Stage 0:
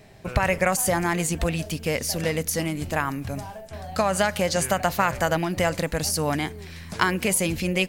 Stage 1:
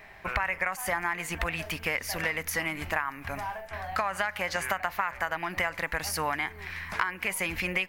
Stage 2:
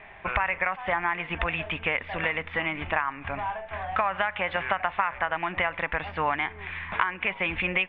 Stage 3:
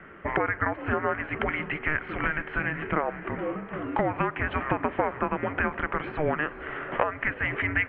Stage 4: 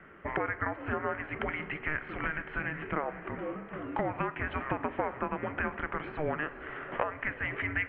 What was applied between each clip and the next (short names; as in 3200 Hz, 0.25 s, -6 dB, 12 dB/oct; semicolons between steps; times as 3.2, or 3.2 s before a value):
ten-band EQ 125 Hz -12 dB, 250 Hz -6 dB, 500 Hz -6 dB, 1000 Hz +7 dB, 2000 Hz +10 dB, 4000 Hz -4 dB, 8000 Hz -9 dB; compressor 6:1, threshold -26 dBFS, peak gain reduction 16.5 dB
rippled Chebyshev low-pass 3600 Hz, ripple 3 dB; gain +4.5 dB
diffused feedback echo 0.527 s, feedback 48%, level -16 dB; frequency shift -460 Hz
reverb RT60 1.1 s, pre-delay 17 ms, DRR 14.5 dB; gain -6 dB